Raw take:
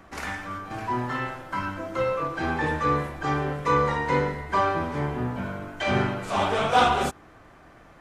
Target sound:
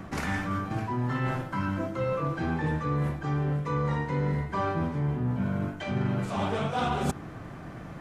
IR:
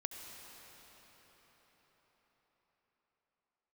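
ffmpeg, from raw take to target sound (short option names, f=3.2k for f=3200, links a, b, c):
-af "equalizer=f=150:w=0.72:g=13,areverse,acompressor=threshold=-31dB:ratio=6,areverse,volume=4.5dB"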